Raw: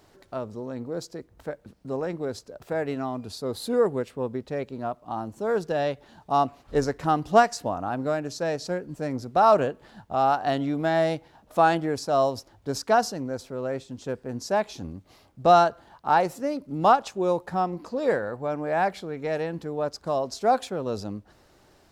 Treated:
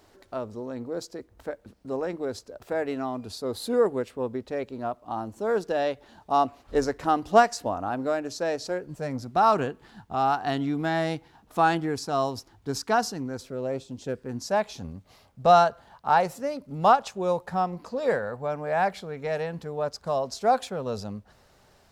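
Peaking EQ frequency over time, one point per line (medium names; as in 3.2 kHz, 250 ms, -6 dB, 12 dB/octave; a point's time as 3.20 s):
peaking EQ -12.5 dB 0.32 oct
8.58 s 150 Hz
9.45 s 580 Hz
13.35 s 580 Hz
13.83 s 2.1 kHz
14.54 s 320 Hz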